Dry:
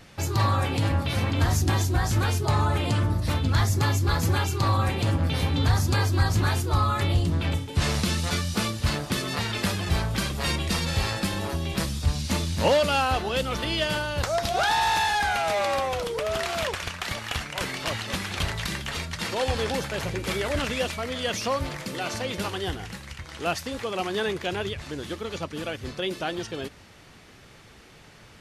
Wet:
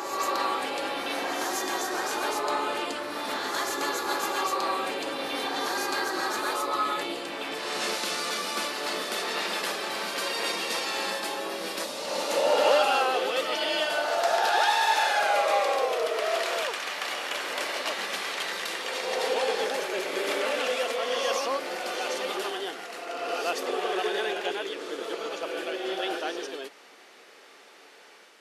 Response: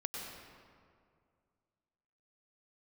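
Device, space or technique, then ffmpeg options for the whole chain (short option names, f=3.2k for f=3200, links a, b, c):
ghost voice: -filter_complex "[0:a]areverse[a];[1:a]atrim=start_sample=2205[b];[a][b]afir=irnorm=-1:irlink=0,areverse,highpass=f=350:w=0.5412,highpass=f=350:w=1.3066"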